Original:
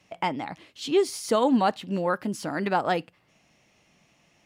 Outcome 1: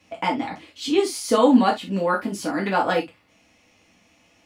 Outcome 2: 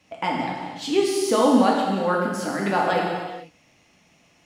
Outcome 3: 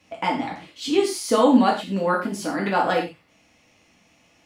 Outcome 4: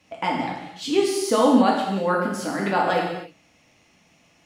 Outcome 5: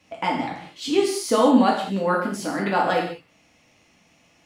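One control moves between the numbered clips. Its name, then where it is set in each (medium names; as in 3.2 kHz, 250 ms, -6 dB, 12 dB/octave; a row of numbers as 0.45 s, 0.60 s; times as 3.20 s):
gated-style reverb, gate: 90 ms, 520 ms, 150 ms, 340 ms, 230 ms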